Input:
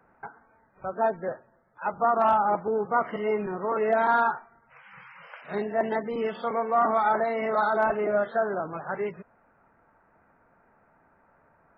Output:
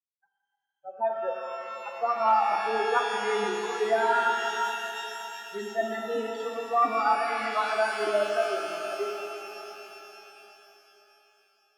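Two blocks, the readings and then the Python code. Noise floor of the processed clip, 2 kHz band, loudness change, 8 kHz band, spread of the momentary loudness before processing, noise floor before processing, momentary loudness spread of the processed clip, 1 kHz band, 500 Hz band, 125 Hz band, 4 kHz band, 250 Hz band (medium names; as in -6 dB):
-81 dBFS, +1.5 dB, -1.5 dB, no reading, 14 LU, -64 dBFS, 14 LU, -0.5 dB, -2.0 dB, under -10 dB, +13.5 dB, -6.5 dB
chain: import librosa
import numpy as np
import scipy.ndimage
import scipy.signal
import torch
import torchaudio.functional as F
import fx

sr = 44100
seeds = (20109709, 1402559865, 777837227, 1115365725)

y = fx.bin_expand(x, sr, power=3.0)
y = scipy.signal.sosfilt(scipy.signal.butter(8, 220.0, 'highpass', fs=sr, output='sos'), y)
y = fx.rev_shimmer(y, sr, seeds[0], rt60_s=3.8, semitones=12, shimmer_db=-8, drr_db=1.0)
y = F.gain(torch.from_numpy(y), 2.5).numpy()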